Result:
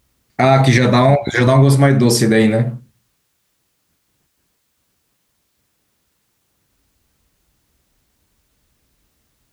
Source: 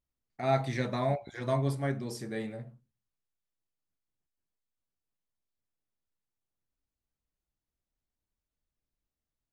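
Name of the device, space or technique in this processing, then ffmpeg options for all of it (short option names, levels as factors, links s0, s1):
mastering chain: -af "highpass=46,equalizer=f=690:t=o:w=0.79:g=-2.5,acompressor=threshold=0.0112:ratio=1.5,alimiter=level_in=28.2:limit=0.891:release=50:level=0:latency=1,volume=0.891"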